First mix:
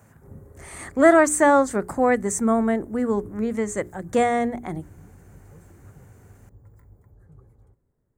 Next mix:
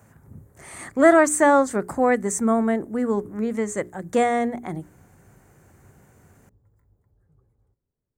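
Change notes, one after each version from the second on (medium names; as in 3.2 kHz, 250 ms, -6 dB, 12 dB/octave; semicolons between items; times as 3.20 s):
background -11.5 dB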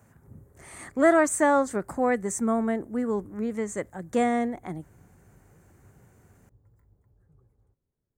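speech -5.0 dB; master: remove hum notches 60/120/180/240/300/360/420 Hz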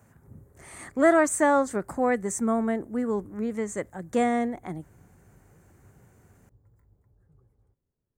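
no change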